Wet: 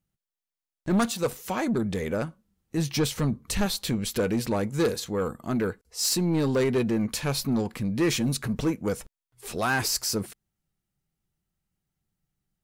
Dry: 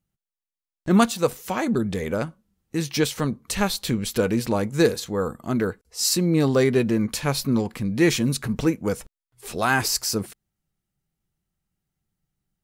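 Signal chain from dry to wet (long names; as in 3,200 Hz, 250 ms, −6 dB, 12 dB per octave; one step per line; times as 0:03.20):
0:02.77–0:03.66: low-shelf EQ 160 Hz +9 dB
soft clipping −16.5 dBFS, distortion −12 dB
level −1.5 dB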